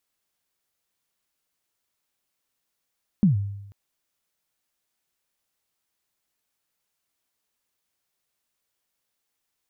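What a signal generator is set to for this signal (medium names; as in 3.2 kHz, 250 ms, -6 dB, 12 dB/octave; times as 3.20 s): kick drum length 0.49 s, from 220 Hz, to 100 Hz, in 130 ms, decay 0.91 s, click off, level -12 dB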